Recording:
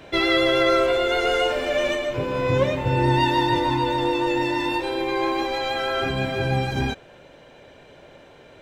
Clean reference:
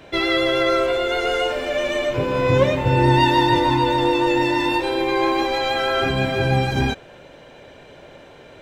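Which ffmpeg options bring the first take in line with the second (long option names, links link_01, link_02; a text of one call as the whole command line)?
ffmpeg -i in.wav -af "asetnsamples=nb_out_samples=441:pad=0,asendcmd='1.95 volume volume 4dB',volume=0dB" out.wav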